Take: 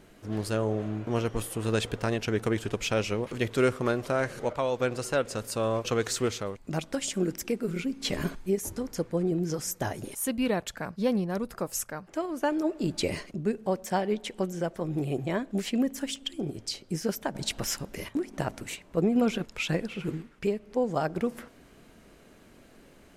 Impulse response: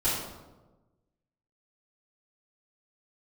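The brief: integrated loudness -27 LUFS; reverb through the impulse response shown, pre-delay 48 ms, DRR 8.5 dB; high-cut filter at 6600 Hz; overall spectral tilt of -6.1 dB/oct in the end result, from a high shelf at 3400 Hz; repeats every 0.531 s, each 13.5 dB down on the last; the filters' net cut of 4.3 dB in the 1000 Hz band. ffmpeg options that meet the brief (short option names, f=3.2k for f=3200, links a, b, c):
-filter_complex "[0:a]lowpass=6.6k,equalizer=f=1k:t=o:g=-5.5,highshelf=f=3.4k:g=-6,aecho=1:1:531|1062:0.211|0.0444,asplit=2[a][b];[1:a]atrim=start_sample=2205,adelay=48[c];[b][c]afir=irnorm=-1:irlink=0,volume=-19dB[d];[a][d]amix=inputs=2:normalize=0,volume=3.5dB"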